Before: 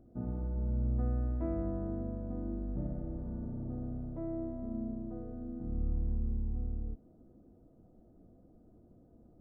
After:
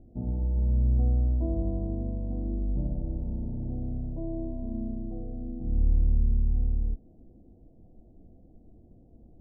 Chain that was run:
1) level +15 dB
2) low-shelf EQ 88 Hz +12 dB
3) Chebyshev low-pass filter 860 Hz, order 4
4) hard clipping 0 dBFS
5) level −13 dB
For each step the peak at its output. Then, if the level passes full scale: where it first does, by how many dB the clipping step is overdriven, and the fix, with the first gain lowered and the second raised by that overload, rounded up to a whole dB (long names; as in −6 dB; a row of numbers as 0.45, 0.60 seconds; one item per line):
−8.0, −0.5, −1.5, −1.5, −14.5 dBFS
no step passes full scale